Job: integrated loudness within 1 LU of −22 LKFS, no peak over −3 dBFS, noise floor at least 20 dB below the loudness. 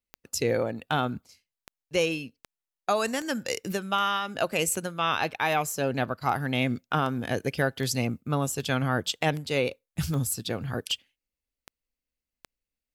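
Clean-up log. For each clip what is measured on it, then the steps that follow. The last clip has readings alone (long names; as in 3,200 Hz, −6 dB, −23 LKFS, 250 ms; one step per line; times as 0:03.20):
number of clicks 17; integrated loudness −28.5 LKFS; sample peak −12.0 dBFS; target loudness −22.0 LKFS
→ click removal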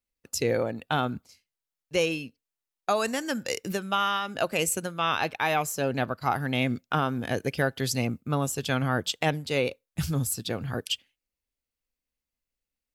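number of clicks 0; integrated loudness −28.5 LKFS; sample peak −12.0 dBFS; target loudness −22.0 LKFS
→ level +6.5 dB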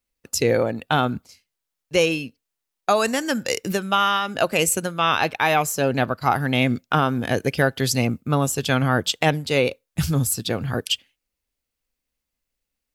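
integrated loudness −22.0 LKFS; sample peak −5.5 dBFS; background noise floor −83 dBFS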